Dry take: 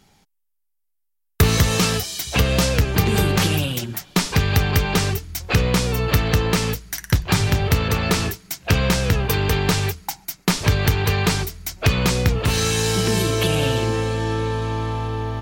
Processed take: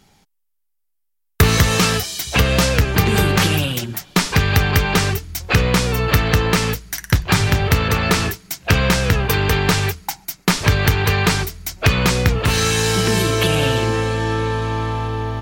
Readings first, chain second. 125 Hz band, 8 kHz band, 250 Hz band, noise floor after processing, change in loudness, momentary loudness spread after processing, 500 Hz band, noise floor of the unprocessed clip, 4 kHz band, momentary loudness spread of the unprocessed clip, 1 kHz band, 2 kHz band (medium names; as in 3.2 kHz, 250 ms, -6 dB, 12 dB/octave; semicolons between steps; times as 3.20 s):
+2.0 dB, +2.0 dB, +2.0 dB, -69 dBFS, +3.0 dB, 7 LU, +2.5 dB, -71 dBFS, +3.0 dB, 7 LU, +4.5 dB, +5.0 dB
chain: dynamic bell 1.6 kHz, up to +4 dB, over -34 dBFS, Q 0.9; trim +2 dB